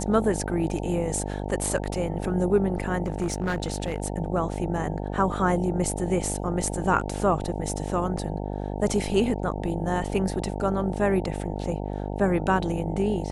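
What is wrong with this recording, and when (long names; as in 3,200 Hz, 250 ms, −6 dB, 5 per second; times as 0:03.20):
mains buzz 50 Hz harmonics 18 −31 dBFS
0:03.06–0:04.00: clipping −21.5 dBFS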